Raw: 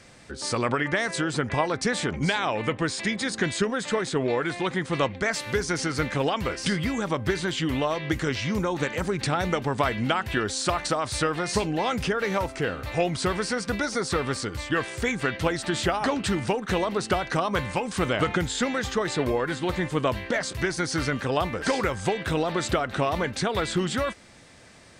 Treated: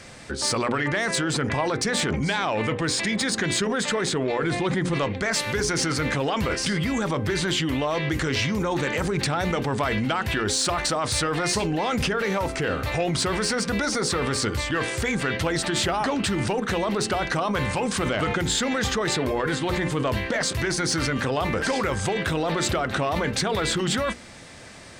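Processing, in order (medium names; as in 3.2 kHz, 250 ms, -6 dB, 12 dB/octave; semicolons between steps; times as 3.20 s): hum notches 60/120/180/240/300/360/420/480 Hz; 4.42–4.94 s: bass shelf 390 Hz +8 dB; in parallel at +0.5 dB: compressor with a negative ratio -30 dBFS, ratio -0.5; on the sum: saturation -12.5 dBFS, distortion -24 dB; trim -1 dB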